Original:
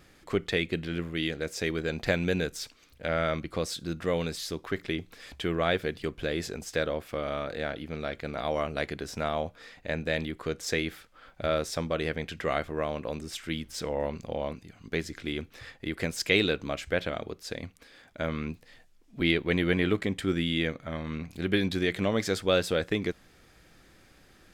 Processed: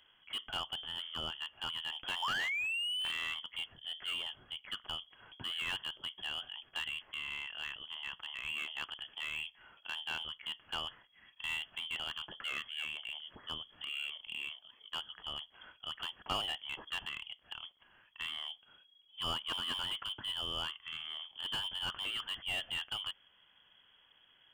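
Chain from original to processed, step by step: painted sound fall, 2.22–3.12 s, 200–2500 Hz -26 dBFS; frequency inversion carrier 3.3 kHz; slew-rate limiter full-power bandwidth 150 Hz; trim -9 dB

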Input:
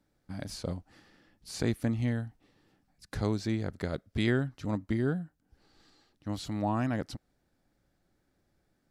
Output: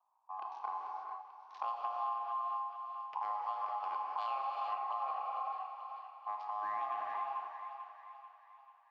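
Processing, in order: local Wiener filter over 41 samples; sample-rate reducer 10 kHz, jitter 0%; FFT filter 140 Hz 0 dB, 460 Hz -17 dB, 1.2 kHz -8 dB, 3.5 kHz -9 dB, 9.2 kHz -29 dB; ring modulator 940 Hz; de-hum 59.06 Hz, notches 14; on a send: thinning echo 440 ms, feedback 53%, high-pass 550 Hz, level -11 dB; on the sum: gated-style reverb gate 490 ms flat, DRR 0 dB; compression 4:1, threshold -37 dBFS, peak gain reduction 9 dB; three-band isolator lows -22 dB, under 410 Hz, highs -21 dB, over 6.7 kHz; trim +2.5 dB

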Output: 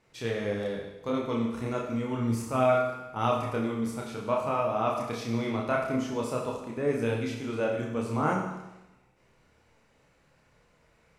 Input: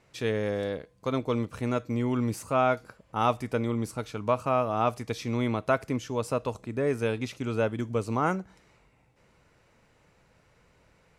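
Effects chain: hum notches 50/100 Hz; chorus voices 2, 0.9 Hz, delay 29 ms, depth 3.2 ms; Schroeder reverb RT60 1 s, combs from 27 ms, DRR 2.5 dB

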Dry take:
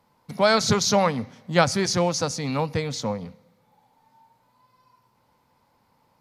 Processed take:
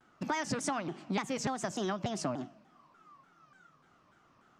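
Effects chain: Bessel low-pass 3.4 kHz, order 2; compression 10:1, threshold -30 dBFS, peak gain reduction 18 dB; speed mistake 33 rpm record played at 45 rpm; vibrato with a chosen wave saw down 3.4 Hz, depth 250 cents

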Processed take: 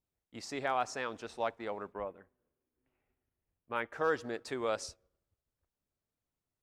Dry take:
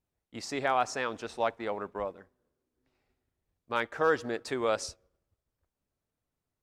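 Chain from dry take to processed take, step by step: 1.92–3.93 s: high-order bell 5.4 kHz -14 dB 1.3 oct; trim -5 dB

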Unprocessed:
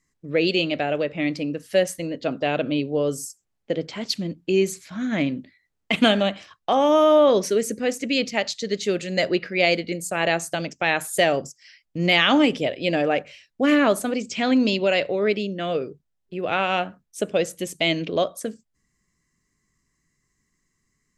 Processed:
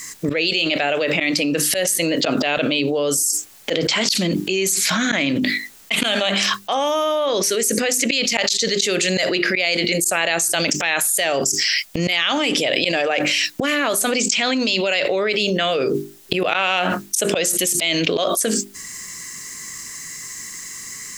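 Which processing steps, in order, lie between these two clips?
tilt EQ +3.5 dB/octave; hum notches 50/100/150/200/250/300/350/400 Hz; slow attack 111 ms; level flattener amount 100%; trim -6 dB

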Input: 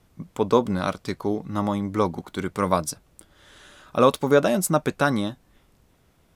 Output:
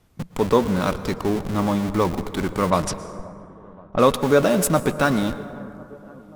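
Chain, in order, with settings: in parallel at -5 dB: Schmitt trigger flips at -33 dBFS; 2.70–4.16 s: on the sum: level-controlled noise filter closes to 660 Hz, open at -16.5 dBFS; feedback echo behind a low-pass 528 ms, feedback 63%, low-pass 990 Hz, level -21.5 dB; plate-style reverb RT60 2.6 s, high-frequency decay 0.35×, pre-delay 100 ms, DRR 13 dB

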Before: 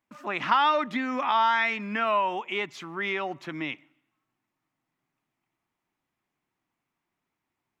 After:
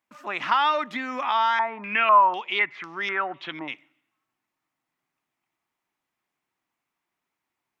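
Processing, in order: bass shelf 330 Hz -10 dB; 1.59–3.68 s: step-sequenced low-pass 4 Hz 900–5600 Hz; trim +1.5 dB

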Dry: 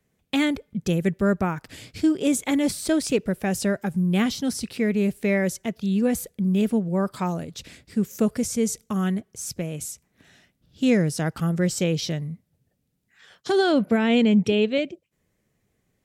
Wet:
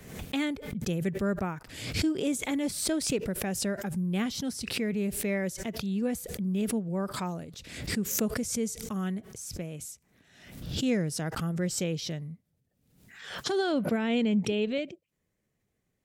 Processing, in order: swell ahead of each attack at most 64 dB/s; trim -8 dB

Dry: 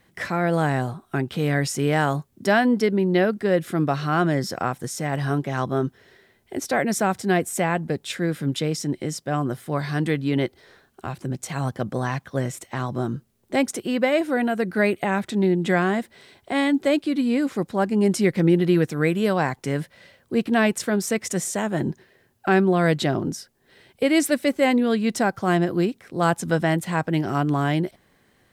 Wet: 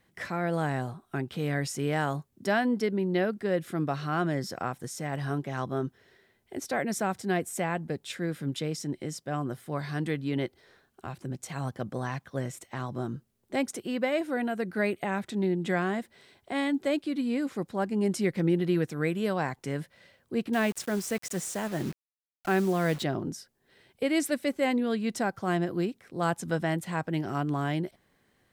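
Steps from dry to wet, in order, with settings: 20.53–23.03 s: word length cut 6-bit, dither none; trim -7.5 dB

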